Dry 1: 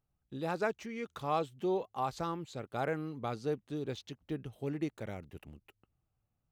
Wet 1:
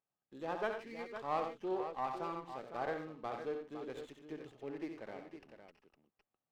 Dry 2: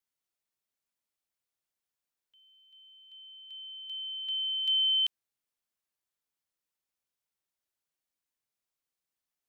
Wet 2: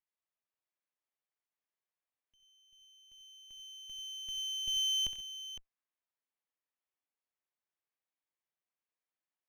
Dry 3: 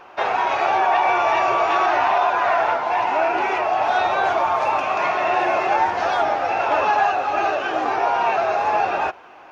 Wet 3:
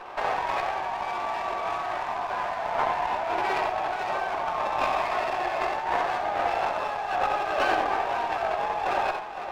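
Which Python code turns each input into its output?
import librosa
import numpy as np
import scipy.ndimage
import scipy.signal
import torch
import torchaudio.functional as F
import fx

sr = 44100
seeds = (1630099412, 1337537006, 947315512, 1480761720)

y = scipy.signal.sosfilt(scipy.signal.butter(2, 2800.0, 'lowpass', fs=sr, output='sos'), x)
y = fx.cheby_harmonics(y, sr, harmonics=(2, 7), levels_db=(-27, -28), full_scale_db=-8.0)
y = scipy.signal.sosfilt(scipy.signal.butter(2, 190.0, 'highpass', fs=sr, output='sos'), y)
y = fx.low_shelf(y, sr, hz=270.0, db=-11.5)
y = fx.over_compress(y, sr, threshold_db=-29.0, ratio=-1.0)
y = fx.notch(y, sr, hz=1400.0, q=12.0)
y = fx.echo_multitap(y, sr, ms=(65, 89, 135, 509), db=(-8.5, -8.5, -17.0, -9.5))
y = fx.running_max(y, sr, window=5)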